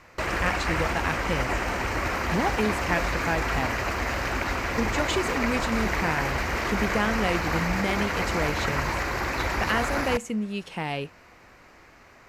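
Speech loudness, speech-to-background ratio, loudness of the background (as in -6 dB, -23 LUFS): -30.0 LUFS, -2.5 dB, -27.5 LUFS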